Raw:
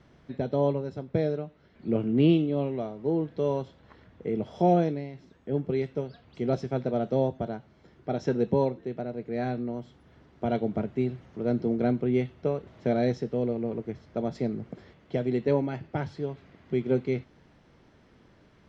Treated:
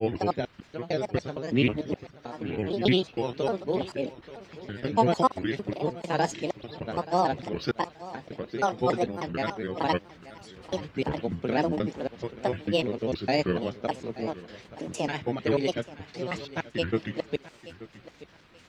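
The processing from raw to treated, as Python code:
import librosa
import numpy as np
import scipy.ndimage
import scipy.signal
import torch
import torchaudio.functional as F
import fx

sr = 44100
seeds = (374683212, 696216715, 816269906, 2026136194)

p1 = fx.block_reorder(x, sr, ms=151.0, group=5)
p2 = fx.granulator(p1, sr, seeds[0], grain_ms=100.0, per_s=20.0, spray_ms=21.0, spread_st=7)
p3 = fx.tilt_shelf(p2, sr, db=-8.0, hz=1100.0)
p4 = p3 + fx.echo_feedback(p3, sr, ms=880, feedback_pct=25, wet_db=-17.0, dry=0)
y = p4 * librosa.db_to_amplitude(6.0)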